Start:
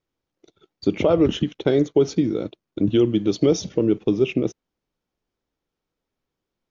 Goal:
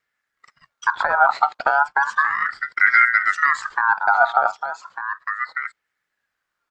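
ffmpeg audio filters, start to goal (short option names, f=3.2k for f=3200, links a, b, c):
-filter_complex "[0:a]acrossover=split=380[a][b];[b]acompressor=threshold=-36dB:ratio=3[c];[a][c]amix=inputs=2:normalize=0,aphaser=in_gain=1:out_gain=1:delay=1.3:decay=0.23:speed=0.7:type=sinusoidal,asplit=2[d][e];[e]aecho=0:1:1199:0.335[f];[d][f]amix=inputs=2:normalize=0,aeval=exprs='val(0)*sin(2*PI*1400*n/s+1400*0.25/0.34*sin(2*PI*0.34*n/s))':c=same,volume=6dB"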